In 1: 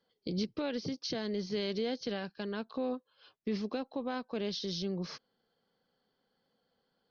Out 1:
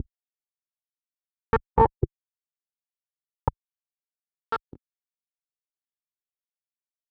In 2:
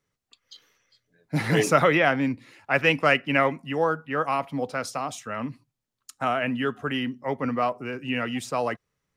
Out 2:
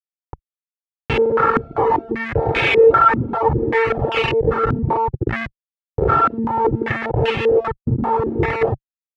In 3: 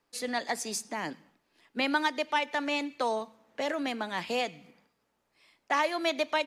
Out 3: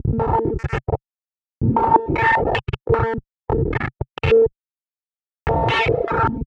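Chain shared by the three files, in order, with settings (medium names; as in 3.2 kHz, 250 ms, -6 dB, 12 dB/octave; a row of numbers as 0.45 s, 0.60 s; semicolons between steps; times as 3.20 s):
reverse spectral sustain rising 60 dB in 1.71 s; speakerphone echo 170 ms, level -27 dB; robot voice 226 Hz; Schmitt trigger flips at -29.5 dBFS; comb 2.3 ms, depth 72%; reverb removal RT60 0.9 s; dynamic bell 130 Hz, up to +6 dB, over -47 dBFS, Q 2; high-pass 60 Hz 12 dB/octave; step-sequenced low-pass 5.1 Hz 240–2700 Hz; peak normalisation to -3 dBFS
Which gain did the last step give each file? +18.5 dB, +5.0 dB, +11.0 dB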